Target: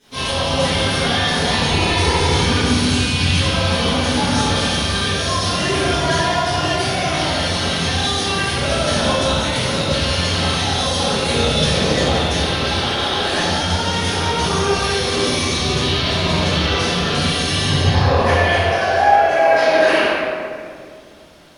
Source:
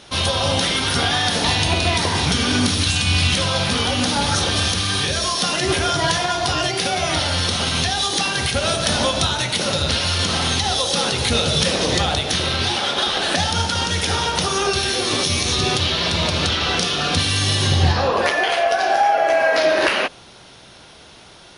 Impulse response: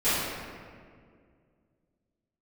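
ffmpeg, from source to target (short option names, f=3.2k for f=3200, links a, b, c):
-filter_complex "[0:a]asettb=1/sr,asplit=3[a][b][c];[a]atrim=end=1.694[d];[b]atrim=start=1.69:end=2.41,asetpts=PTS-STARTPTS,afade=t=in:d=0.004:c=qsin,afade=t=out:st=0.716:d=0.004:c=qsin,aecho=1:1:2.3:0.7,atrim=end_sample=31752[e];[c]atrim=start=2.406[f];[d][e]acrossfade=d=0.004:c1=hsin:c2=qsin[g];[g][f]acrossfade=d=0.004:c1=qsin:c2=hsin,aeval=exprs='sgn(val(0))*max(abs(val(0))-0.00376,0)':c=same[h];[1:a]atrim=start_sample=2205,asetrate=41013,aresample=44100[i];[h][i]afir=irnorm=-1:irlink=0,volume=-13dB"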